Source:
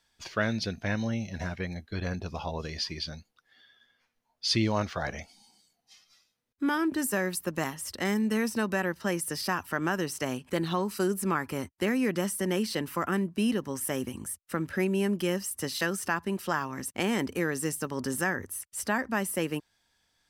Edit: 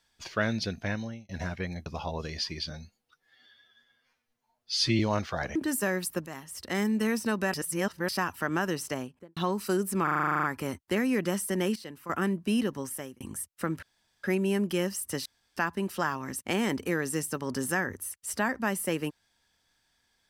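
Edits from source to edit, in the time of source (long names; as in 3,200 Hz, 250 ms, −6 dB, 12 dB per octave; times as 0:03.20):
0:00.82–0:01.29: fade out
0:01.86–0:02.26: remove
0:03.10–0:04.63: time-stretch 1.5×
0:05.19–0:06.86: remove
0:07.57–0:08.13: fade in, from −13 dB
0:08.84–0:09.39: reverse
0:10.11–0:10.67: fade out and dull
0:11.34: stutter 0.04 s, 11 plays
0:12.66–0:13.00: clip gain −11.5 dB
0:13.66–0:14.11: fade out
0:14.73: splice in room tone 0.41 s
0:15.75–0:16.06: fill with room tone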